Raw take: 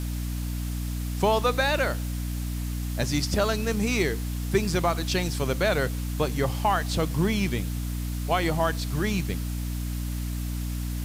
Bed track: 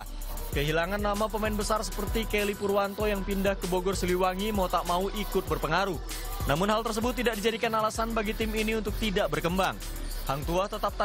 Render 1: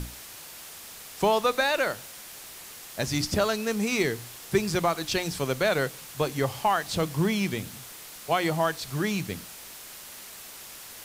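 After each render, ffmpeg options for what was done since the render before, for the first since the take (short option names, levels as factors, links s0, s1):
-af "bandreject=f=60:t=h:w=6,bandreject=f=120:t=h:w=6,bandreject=f=180:t=h:w=6,bandreject=f=240:t=h:w=6,bandreject=f=300:t=h:w=6"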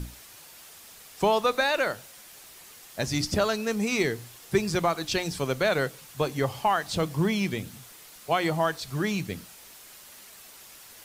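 -af "afftdn=nr=6:nf=-44"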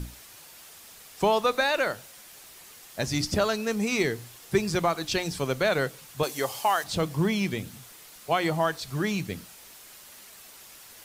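-filter_complex "[0:a]asettb=1/sr,asplit=3[s0][s1][s2];[s0]atrim=end=6.234[s3];[s1]atrim=start=6.23:end=6.84,asetpts=PTS-STARTPTS,afade=t=in:d=0.004:c=qsin,afade=t=out:st=0.606:d=0.004:c=qsin,bass=f=250:g=-14,treble=f=4000:g=9[s4];[s2]atrim=start=6.836[s5];[s3][s4]acrossfade=d=0.004:c1=hsin:c2=qsin[s6];[s6][s5]acrossfade=d=0.004:c1=qsin:c2=hsin"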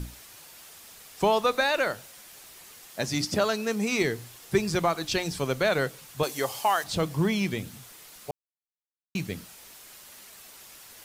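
-filter_complex "[0:a]asettb=1/sr,asplit=3[s0][s1][s2];[s0]atrim=end=2.904[s3];[s1]atrim=start=2.9:end=4.02,asetpts=PTS-STARTPTS,afade=t=in:d=0.004:c=qsin,afade=t=out:st=1.116:d=0.004:c=qsin,highpass=130[s4];[s2]atrim=start=4.016[s5];[s3][s4]acrossfade=d=0.004:c1=hsin:c2=qsin[s6];[s6][s5]acrossfade=d=0.004:c1=qsin:c2=hsin,asplit=3[s7][s8][s9];[s7]atrim=end=8.31,asetpts=PTS-STARTPTS,afade=t=out:st=8.306:d=0.004:c=hsin[s10];[s8]atrim=start=8.31:end=9.15,asetpts=PTS-STARTPTS,volume=0[s11];[s9]atrim=start=9.15,asetpts=PTS-STARTPTS,afade=t=in:d=0.004:c=hsin[s12];[s10][s11][s12]concat=n=3:v=0:a=1"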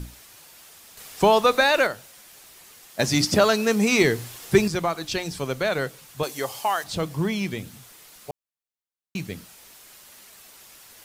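-filter_complex "[0:a]asettb=1/sr,asplit=3[s0][s1][s2];[s0]atrim=end=0.974[s3];[s1]atrim=start=0.97:end=1.87,asetpts=PTS-STARTPTS,afade=t=in:d=0.004:c=qsin,afade=t=out:st=0.896:d=0.004:c=qsin,acontrast=51[s4];[s2]atrim=start=1.866[s5];[s3][s4]acrossfade=d=0.004:c1=hsin:c2=qsin[s6];[s6][s5]acrossfade=d=0.004:c1=qsin:c2=hsin,asettb=1/sr,asplit=3[s7][s8][s9];[s7]atrim=end=2.994[s10];[s8]atrim=start=2.99:end=4.68,asetpts=PTS-STARTPTS,afade=t=in:d=0.004:c=qsin,afade=t=out:st=1.686:d=0.004:c=qsin,acontrast=88[s11];[s9]atrim=start=4.676[s12];[s10][s11]acrossfade=d=0.004:c1=hsin:c2=qsin[s13];[s13][s12]acrossfade=d=0.004:c1=qsin:c2=hsin"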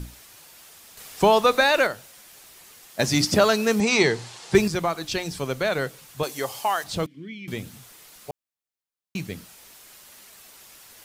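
-filter_complex "[0:a]asettb=1/sr,asplit=3[s0][s1][s2];[s0]atrim=end=3.804[s3];[s1]atrim=start=3.8:end=4.55,asetpts=PTS-STARTPTS,afade=t=in:d=0.004:c=qsin,afade=t=out:st=0.746:d=0.004:c=qsin,highpass=120,equalizer=f=270:t=q:w=4:g=-7,equalizer=f=870:t=q:w=4:g=7,equalizer=f=4300:t=q:w=4:g=4,lowpass=f=8200:w=0.5412,lowpass=f=8200:w=1.3066[s4];[s2]atrim=start=4.546[s5];[s3][s4]acrossfade=d=0.004:c1=hsin:c2=qsin[s6];[s6][s5]acrossfade=d=0.004:c1=qsin:c2=hsin,asettb=1/sr,asplit=3[s7][s8][s9];[s7]atrim=end=7.064[s10];[s8]atrim=start=7.06:end=7.48,asetpts=PTS-STARTPTS,afade=t=in:d=0.004:c=qsin,afade=t=out:st=0.416:d=0.004:c=qsin,asplit=3[s11][s12][s13];[s11]bandpass=f=270:t=q:w=8,volume=1[s14];[s12]bandpass=f=2290:t=q:w=8,volume=0.501[s15];[s13]bandpass=f=3010:t=q:w=8,volume=0.355[s16];[s14][s15][s16]amix=inputs=3:normalize=0[s17];[s9]atrim=start=7.476[s18];[s10][s17]acrossfade=d=0.004:c1=hsin:c2=qsin[s19];[s19][s18]acrossfade=d=0.004:c1=qsin:c2=hsin"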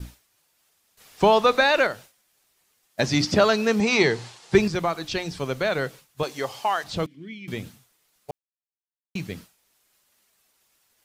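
-filter_complex "[0:a]agate=range=0.0224:threshold=0.0158:ratio=3:detection=peak,acrossover=split=6100[s0][s1];[s1]acompressor=threshold=0.00224:ratio=4:attack=1:release=60[s2];[s0][s2]amix=inputs=2:normalize=0"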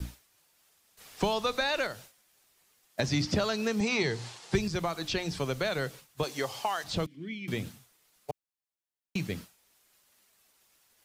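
-filter_complex "[0:a]acrossover=split=130|3500[s0][s1][s2];[s1]acompressor=threshold=0.0355:ratio=4[s3];[s2]alimiter=level_in=1.58:limit=0.0631:level=0:latency=1:release=261,volume=0.631[s4];[s0][s3][s4]amix=inputs=3:normalize=0"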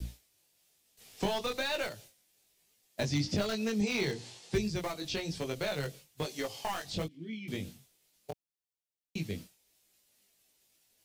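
-filter_complex "[0:a]flanger=delay=18:depth=3.4:speed=1.1,acrossover=split=840|1800[s0][s1][s2];[s1]acrusher=bits=4:dc=4:mix=0:aa=0.000001[s3];[s0][s3][s2]amix=inputs=3:normalize=0"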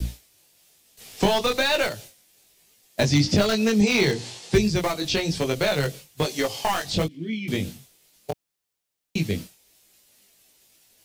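-af "volume=3.76"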